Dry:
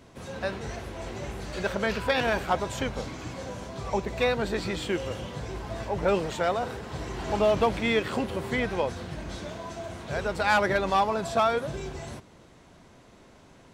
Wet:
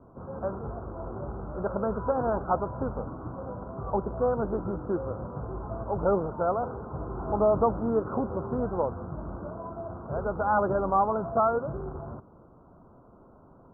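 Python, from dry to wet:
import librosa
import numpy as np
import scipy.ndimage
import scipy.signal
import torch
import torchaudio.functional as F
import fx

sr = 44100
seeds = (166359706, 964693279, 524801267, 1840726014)

y = fx.rattle_buzz(x, sr, strikes_db=-39.0, level_db=-23.0)
y = scipy.signal.sosfilt(scipy.signal.butter(16, 1400.0, 'lowpass', fs=sr, output='sos'), y)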